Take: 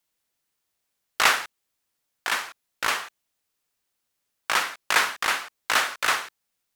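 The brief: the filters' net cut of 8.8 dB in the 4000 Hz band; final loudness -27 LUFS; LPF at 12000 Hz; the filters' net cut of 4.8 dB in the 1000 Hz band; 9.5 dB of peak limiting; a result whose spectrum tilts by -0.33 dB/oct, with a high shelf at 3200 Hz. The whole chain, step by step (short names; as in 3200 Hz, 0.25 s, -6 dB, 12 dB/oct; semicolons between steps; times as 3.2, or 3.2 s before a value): LPF 12000 Hz; bell 1000 Hz -5 dB; high shelf 3200 Hz -5 dB; bell 4000 Hz -8 dB; gain +6 dB; limiter -13 dBFS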